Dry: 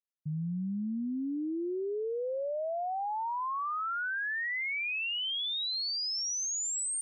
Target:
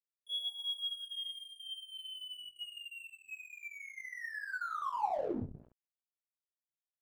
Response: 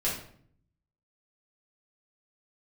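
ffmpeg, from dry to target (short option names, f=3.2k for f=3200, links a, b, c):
-filter_complex "[0:a]acrossover=split=200|2300[a][b][c];[a]acompressor=threshold=-36dB:ratio=4[d];[b]acompressor=threshold=-43dB:ratio=4[e];[c]acompressor=threshold=-37dB:ratio=4[f];[d][e][f]amix=inputs=3:normalize=0,bandreject=f=60:t=h:w=6,bandreject=f=120:t=h:w=6,bandreject=f=180:t=h:w=6,bandreject=f=240:t=h:w=6,bandreject=f=300:t=h:w=6,bandreject=f=360:t=h:w=6[g];[1:a]atrim=start_sample=2205[h];[g][h]afir=irnorm=-1:irlink=0,lowpass=f=3k:t=q:w=0.5098,lowpass=f=3k:t=q:w=0.6013,lowpass=f=3k:t=q:w=0.9,lowpass=f=3k:t=q:w=2.563,afreqshift=-3500,aeval=exprs='sgn(val(0))*max(abs(val(0))-0.00794,0)':c=same,tiltshelf=f=880:g=8,aecho=1:1:20|68:0.316|0.126,areverse,acompressor=mode=upward:threshold=-48dB:ratio=2.5,areverse,volume=-5.5dB"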